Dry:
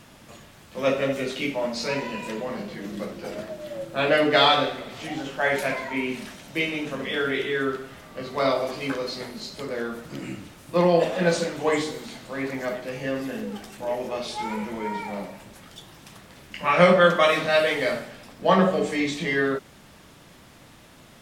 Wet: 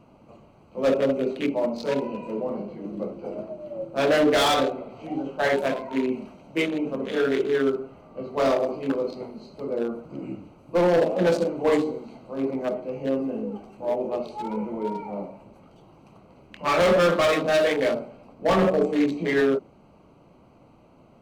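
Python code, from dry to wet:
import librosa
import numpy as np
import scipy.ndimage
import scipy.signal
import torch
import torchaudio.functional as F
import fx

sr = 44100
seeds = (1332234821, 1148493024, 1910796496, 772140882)

y = fx.wiener(x, sr, points=25)
y = fx.low_shelf(y, sr, hz=200.0, db=-7.5)
y = np.clip(10.0 ** (21.0 / 20.0) * y, -1.0, 1.0) / 10.0 ** (21.0 / 20.0)
y = fx.dynamic_eq(y, sr, hz=330.0, q=0.75, threshold_db=-38.0, ratio=4.0, max_db=6)
y = y * 10.0 ** (1.5 / 20.0)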